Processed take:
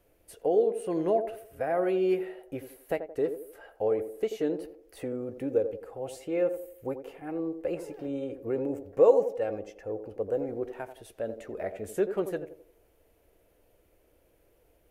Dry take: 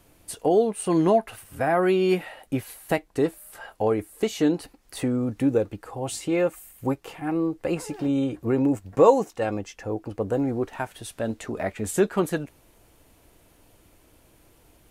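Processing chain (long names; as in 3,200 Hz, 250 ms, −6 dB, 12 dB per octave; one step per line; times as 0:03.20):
graphic EQ with 10 bands 125 Hz −6 dB, 250 Hz −6 dB, 500 Hz +8 dB, 1,000 Hz −7 dB, 4,000 Hz −6 dB, 8,000 Hz −8 dB
on a send: feedback echo with a band-pass in the loop 86 ms, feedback 44%, band-pass 460 Hz, level −8.5 dB
on the sum: level −7.5 dB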